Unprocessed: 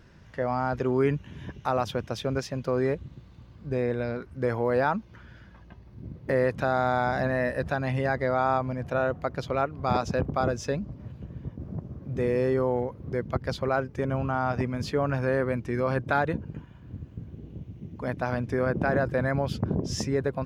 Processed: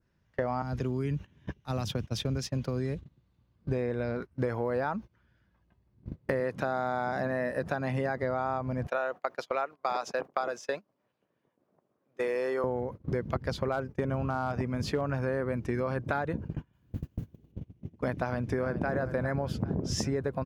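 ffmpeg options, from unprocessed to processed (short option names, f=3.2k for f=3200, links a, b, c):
-filter_complex "[0:a]asettb=1/sr,asplit=3[a][b][c];[a]atrim=end=0.624[d];[b]atrim=start=0.62:end=3.68,asetpts=PTS-STARTPTS,afade=t=in:d=0.004:c=qsin,afade=t=out:st=3.056:d=0.004:c=qsin,acrossover=split=250|3000[e][f][g];[f]acompressor=threshold=-40dB:ratio=4:attack=3.2:release=140:knee=2.83:detection=peak[h];[e][h][g]amix=inputs=3:normalize=0[i];[c]atrim=start=3.676[j];[d][i]acrossfade=d=0.004:c1=hsin:c2=qsin[k];[k][j]acrossfade=d=0.004:c1=qsin:c2=hsin,asettb=1/sr,asplit=3[l][m][n];[l]atrim=end=6.404[o];[m]atrim=start=6.4:end=8.23,asetpts=PTS-STARTPTS,afade=t=in:d=0.004:c=qsin,afade=t=out:st=1.826:d=0.004:c=qsin,highpass=140[p];[n]atrim=start=8.226[q];[o][p]acrossfade=d=0.004:c1=hsin:c2=qsin[r];[r][q]acrossfade=d=0.004:c1=qsin:c2=hsin,asettb=1/sr,asplit=3[s][t][u];[s]atrim=end=8.874[v];[t]atrim=start=8.87:end=12.64,asetpts=PTS-STARTPTS,afade=t=in:d=0.004:c=qsin,afade=t=out:st=3.766:d=0.004:c=qsin,highpass=580[w];[u]atrim=start=12.636[x];[v][w]acrossfade=d=0.004:c1=hsin:c2=qsin[y];[y][x]acrossfade=d=0.004:c1=qsin:c2=hsin,asettb=1/sr,asplit=3[z][aa][ab];[z]atrim=end=13.724[ac];[aa]atrim=start=13.72:end=15.02,asetpts=PTS-STARTPTS,afade=t=in:d=0.004:c=qsin,afade=t=out:st=1.296:d=0.004:c=qsin,volume=16.5dB,asoftclip=hard,volume=-16.5dB[ad];[ab]atrim=start=15.016[ae];[ac][ad]acrossfade=d=0.004:c1=hsin:c2=qsin[af];[af][ae]acrossfade=d=0.004:c1=qsin:c2=hsin,asettb=1/sr,asplit=3[ag][ah][ai];[ag]atrim=end=16.734[aj];[ah]atrim=start=16.73:end=17.52,asetpts=PTS-STARTPTS,afade=t=in:d=0.004:c=qsin,afade=t=out:st=0.786:d=0.004:c=qsin,aemphasis=mode=production:type=75kf[ak];[ai]atrim=start=17.516[al];[aj][ak]acrossfade=d=0.004:c1=hsin:c2=qsin[am];[am][al]acrossfade=d=0.004:c1=qsin:c2=hsin,asplit=2[an][ao];[ao]afade=t=in:st=18.22:d=0.01,afade=t=out:st=18.93:d=0.01,aecho=0:1:400|800|1200|1600:0.237137|0.0829981|0.0290493|0.0101673[ap];[an][ap]amix=inputs=2:normalize=0,agate=range=-26dB:threshold=-36dB:ratio=16:detection=peak,adynamicequalizer=threshold=0.00501:dfrequency=3200:dqfactor=1:tfrequency=3200:tqfactor=1:attack=5:release=100:ratio=0.375:range=2.5:mode=cutabove:tftype=bell,acompressor=threshold=-34dB:ratio=6,volume=6.5dB"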